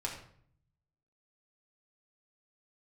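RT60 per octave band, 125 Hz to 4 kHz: 1.2, 0.90, 0.60, 0.55, 0.50, 0.45 seconds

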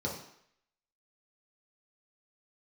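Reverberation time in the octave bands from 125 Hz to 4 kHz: 0.50, 0.60, 0.65, 0.70, 0.75, 0.70 seconds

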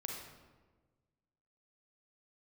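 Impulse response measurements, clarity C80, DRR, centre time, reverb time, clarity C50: 4.0 dB, 0.0 dB, 58 ms, 1.4 s, 1.5 dB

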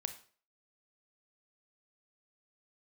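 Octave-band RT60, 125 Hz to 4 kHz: 0.45, 0.40, 0.45, 0.40, 0.40, 0.40 seconds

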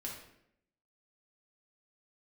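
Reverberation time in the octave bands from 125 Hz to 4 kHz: 0.80, 0.90, 0.80, 0.70, 0.70, 0.55 seconds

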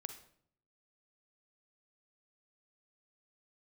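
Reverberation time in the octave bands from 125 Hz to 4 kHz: 0.90, 0.80, 0.70, 0.55, 0.50, 0.45 seconds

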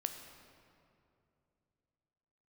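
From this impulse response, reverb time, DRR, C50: 2.7 s, 5.5 dB, 7.0 dB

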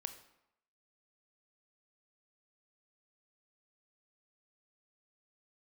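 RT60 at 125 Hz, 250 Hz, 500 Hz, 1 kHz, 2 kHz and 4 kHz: 0.70, 0.75, 0.80, 0.85, 0.75, 0.60 seconds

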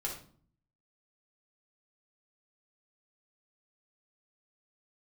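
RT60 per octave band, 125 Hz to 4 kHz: 0.85, 0.75, 0.55, 0.45, 0.35, 0.35 seconds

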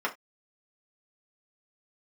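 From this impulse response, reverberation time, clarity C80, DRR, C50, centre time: non-exponential decay, 25.5 dB, −3.0 dB, 16.0 dB, 10 ms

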